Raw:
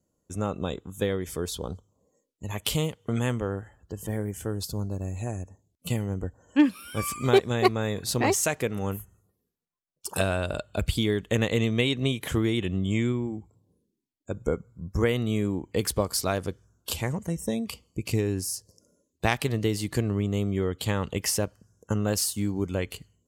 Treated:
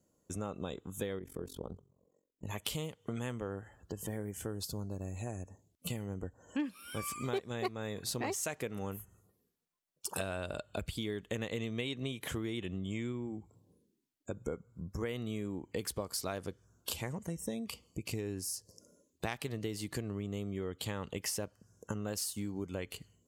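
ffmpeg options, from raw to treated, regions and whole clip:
ffmpeg -i in.wav -filter_complex "[0:a]asettb=1/sr,asplit=3[link_01][link_02][link_03];[link_01]atrim=end=1.194[link_04];[link_02]atrim=start=1.19:end=2.47,asetpts=PTS-STARTPTS,afade=type=in:duration=0.004:curve=qsin,afade=type=out:start_time=1.276:duration=0.004:curve=qsin,bandreject=frequency=133.5:width_type=h:width=4,bandreject=frequency=267:width_type=h:width=4,bandreject=frequency=400.5:width_type=h:width=4,tremolo=f=45:d=0.919,equalizer=frequency=5000:width=0.32:gain=-14[link_05];[link_03]atrim=start=2.466[link_06];[link_04][link_05]acrossfade=duration=0.004:curve1=hsin:curve2=qsin[link_07];[link_07][link_06]acrossfade=duration=0.004:curve1=qsin:curve2=hsin,acompressor=threshold=-40dB:ratio=3,lowshelf=frequency=95:gain=-7,volume=2dB" out.wav

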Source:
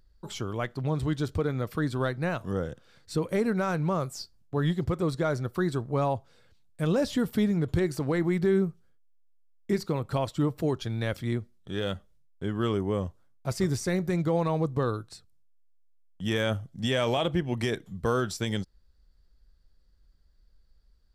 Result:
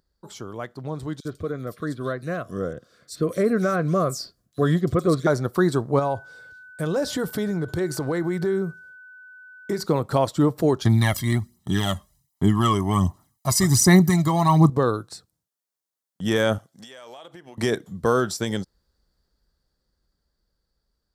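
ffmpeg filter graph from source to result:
ffmpeg -i in.wav -filter_complex "[0:a]asettb=1/sr,asplit=3[link_01][link_02][link_03];[link_01]atrim=end=1.204[link_04];[link_02]atrim=start=1.2:end=5.27,asetpts=PTS-STARTPTS,afade=type=in:duration=0.004:curve=qsin,afade=type=out:start_time=4.066:duration=0.004:curve=qsin,asuperstop=centerf=870:order=12:qfactor=3.5,acrossover=split=3300[link_05][link_06];[link_05]adelay=50[link_07];[link_07][link_06]amix=inputs=2:normalize=0,atrim=end_sample=179487[link_08];[link_03]atrim=start=5.266[link_09];[link_04][link_08]acrossfade=duration=0.004:curve1=hsin:curve2=qsin[link_10];[link_10][link_09]acrossfade=duration=0.004:curve1=qsin:curve2=hsin,asettb=1/sr,asplit=3[link_11][link_12][link_13];[link_11]atrim=end=5.994[link_14];[link_12]atrim=start=5.99:end=9.84,asetpts=PTS-STARTPTS,afade=type=in:duration=0.004:curve=qsin,afade=type=out:start_time=3.846:duration=0.004:curve=qsin,equalizer=frequency=230:width=6.2:gain=-11.5,acompressor=threshold=-30dB:ratio=3:attack=3.2:release=140:knee=1:detection=peak,aeval=exprs='val(0)+0.00282*sin(2*PI*1500*n/s)':channel_layout=same[link_15];[link_13]atrim=start=9.836[link_16];[link_14][link_15]acrossfade=duration=0.004:curve1=hsin:curve2=qsin[link_17];[link_17][link_16]acrossfade=duration=0.004:curve1=qsin:curve2=hsin,asettb=1/sr,asplit=3[link_18][link_19][link_20];[link_18]atrim=end=10.854[link_21];[link_19]atrim=start=10.85:end=14.7,asetpts=PTS-STARTPTS,afade=type=in:duration=0.004:curve=qsin,afade=type=out:start_time=3.846:duration=0.004:curve=qsin,aemphasis=mode=production:type=cd,aecho=1:1:1:0.94,atrim=end_sample=169785,aphaser=in_gain=1:out_gain=1:delay=1.9:decay=0.53:speed=1.3:type=sinusoidal[link_22];[link_20]atrim=start=14.696[link_23];[link_21][link_22]acrossfade=duration=0.004:curve1=hsin:curve2=qsin[link_24];[link_24][link_23]acrossfade=duration=0.004:curve1=qsin:curve2=hsin,asettb=1/sr,asplit=3[link_25][link_26][link_27];[link_25]atrim=end=16.584[link_28];[link_26]atrim=start=16.58:end=17.58,asetpts=PTS-STARTPTS,afade=type=in:duration=0.004:curve=qsin,afade=type=out:start_time=0.996:duration=0.004:curve=qsin,highpass=frequency=1000:poles=1,acompressor=threshold=-45dB:ratio=12:attack=3.2:release=140:knee=1:detection=peak[link_29];[link_27]atrim=start=17.576[link_30];[link_28][link_29]acrossfade=duration=0.004:curve1=hsin:curve2=qsin[link_31];[link_31][link_30]acrossfade=duration=0.004:curve1=qsin:curve2=hsin,highpass=frequency=200:poles=1,equalizer=frequency=2600:width_type=o:width=0.9:gain=-8,dynaudnorm=framelen=490:gausssize=13:maxgain=10dB" out.wav

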